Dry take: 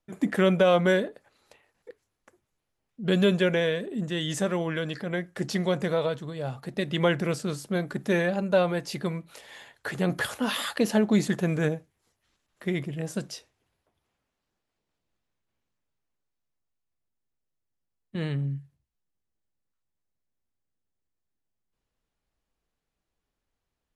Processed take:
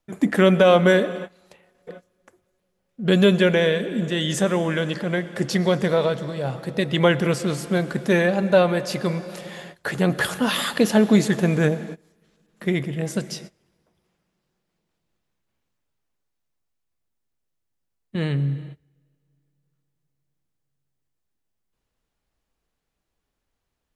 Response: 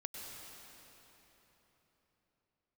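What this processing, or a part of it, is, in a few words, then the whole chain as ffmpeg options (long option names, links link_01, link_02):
keyed gated reverb: -filter_complex "[0:a]asplit=3[link_01][link_02][link_03];[1:a]atrim=start_sample=2205[link_04];[link_02][link_04]afir=irnorm=-1:irlink=0[link_05];[link_03]apad=whole_len=1056463[link_06];[link_05][link_06]sidechaingate=range=-25dB:threshold=-51dB:ratio=16:detection=peak,volume=-7.5dB[link_07];[link_01][link_07]amix=inputs=2:normalize=0,volume=4dB"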